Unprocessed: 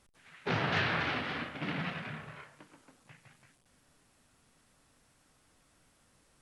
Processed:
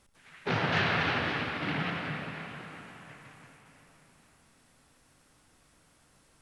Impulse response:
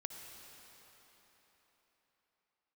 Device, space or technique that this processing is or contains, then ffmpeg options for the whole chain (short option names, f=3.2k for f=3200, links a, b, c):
cathedral: -filter_complex "[1:a]atrim=start_sample=2205[a];[0:a][a]afir=irnorm=-1:irlink=0,volume=6dB"